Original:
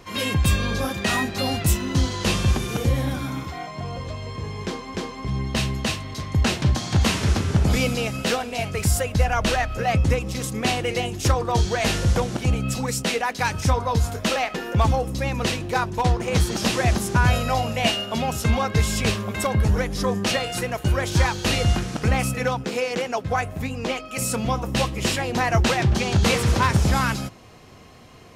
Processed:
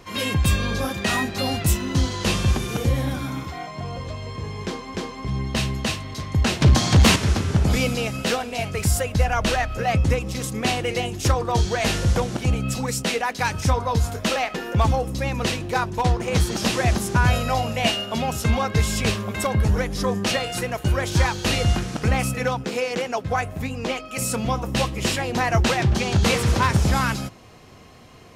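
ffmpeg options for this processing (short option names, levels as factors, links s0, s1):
-filter_complex "[0:a]asettb=1/sr,asplit=3[s0][s1][s2];[s0]atrim=end=6.614[s3];[s1]atrim=start=6.61:end=7.16,asetpts=PTS-STARTPTS,afade=t=in:d=0.004:c=qsin,afade=t=out:st=0.546:d=0.004:c=qsin,aeval=exprs='0.376*sin(PI/2*1.58*val(0)/0.376)':c=same[s4];[s2]atrim=start=7.156[s5];[s3][s4]acrossfade=d=0.004:c1=hsin:c2=qsin[s6];[s6][s5]acrossfade=d=0.004:c1=qsin:c2=hsin"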